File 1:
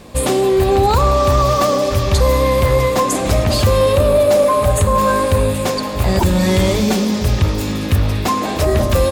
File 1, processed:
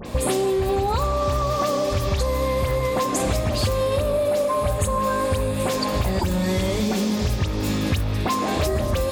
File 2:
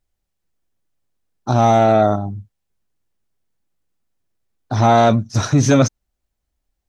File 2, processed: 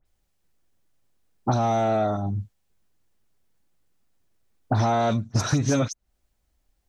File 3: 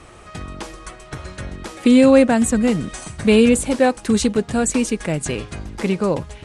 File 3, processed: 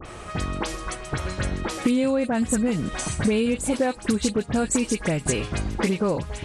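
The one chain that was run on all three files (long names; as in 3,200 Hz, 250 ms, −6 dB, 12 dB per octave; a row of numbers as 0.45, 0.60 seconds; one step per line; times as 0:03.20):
downward compressor 8 to 1, threshold −24 dBFS
all-pass dispersion highs, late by 57 ms, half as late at 2,700 Hz
level +4.5 dB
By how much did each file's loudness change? −7.5, −9.0, −7.5 LU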